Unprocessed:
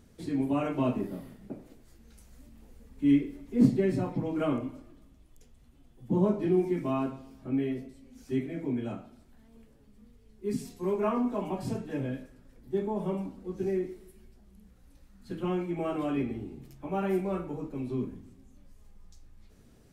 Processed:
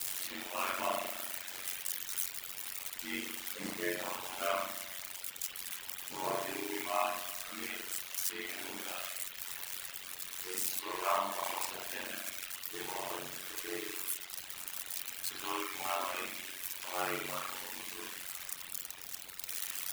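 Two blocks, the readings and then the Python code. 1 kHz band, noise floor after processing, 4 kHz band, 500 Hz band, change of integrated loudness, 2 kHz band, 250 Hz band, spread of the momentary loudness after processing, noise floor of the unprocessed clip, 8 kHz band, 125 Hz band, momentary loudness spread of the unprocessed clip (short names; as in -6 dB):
+1.5 dB, -48 dBFS, +13.5 dB, -9.5 dB, -6.5 dB, +8.0 dB, -19.0 dB, 6 LU, -59 dBFS, +19.5 dB, -24.0 dB, 16 LU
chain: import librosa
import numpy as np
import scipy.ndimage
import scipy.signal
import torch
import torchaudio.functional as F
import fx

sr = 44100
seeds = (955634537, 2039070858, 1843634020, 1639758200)

p1 = x + 0.5 * 10.0 ** (-25.5 / 20.0) * np.diff(np.sign(x), prepend=np.sign(x[:1]))
p2 = scipy.signal.sosfilt(scipy.signal.butter(2, 1200.0, 'highpass', fs=sr, output='sos'), p1)
p3 = fx.rev_spring(p2, sr, rt60_s=1.5, pass_ms=(36,), chirp_ms=60, drr_db=-7.5)
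p4 = fx.quant_dither(p3, sr, seeds[0], bits=6, dither='triangular')
p5 = p3 + F.gain(torch.from_numpy(p4), -8.0).numpy()
p6 = fx.dereverb_blind(p5, sr, rt60_s=1.1)
y = p6 * np.sin(2.0 * np.pi * 46.0 * np.arange(len(p6)) / sr)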